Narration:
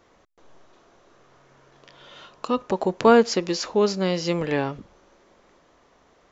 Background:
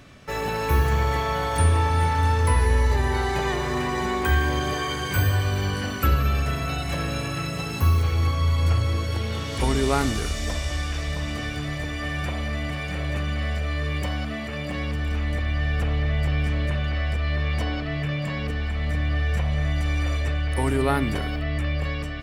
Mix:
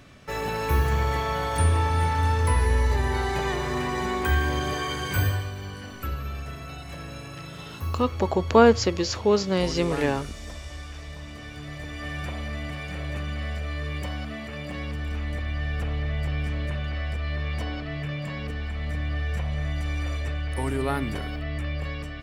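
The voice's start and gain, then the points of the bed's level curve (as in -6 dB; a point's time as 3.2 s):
5.50 s, -0.5 dB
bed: 5.26 s -2 dB
5.54 s -11 dB
11.38 s -11 dB
12.1 s -4.5 dB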